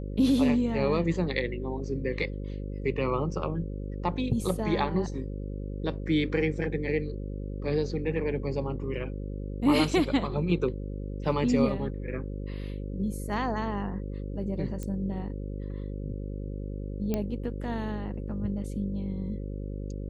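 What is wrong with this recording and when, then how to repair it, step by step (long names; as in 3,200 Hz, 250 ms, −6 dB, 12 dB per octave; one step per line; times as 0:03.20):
mains buzz 50 Hz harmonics 11 −35 dBFS
0:14.83: click −23 dBFS
0:17.14: click −16 dBFS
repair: click removal
hum removal 50 Hz, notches 11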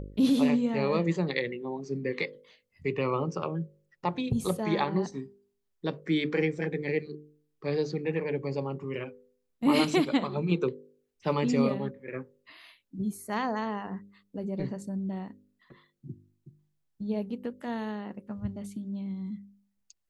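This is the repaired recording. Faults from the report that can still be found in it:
none of them is left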